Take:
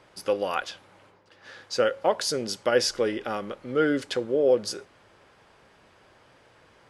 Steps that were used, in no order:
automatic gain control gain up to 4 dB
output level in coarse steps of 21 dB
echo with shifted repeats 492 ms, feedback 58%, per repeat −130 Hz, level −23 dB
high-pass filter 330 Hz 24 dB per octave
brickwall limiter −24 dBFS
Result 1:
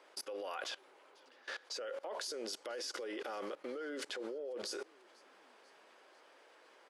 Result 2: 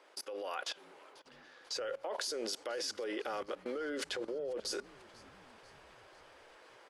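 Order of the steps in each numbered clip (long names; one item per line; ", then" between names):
automatic gain control, then brickwall limiter, then echo with shifted repeats, then high-pass filter, then output level in coarse steps
high-pass filter, then brickwall limiter, then output level in coarse steps, then echo with shifted repeats, then automatic gain control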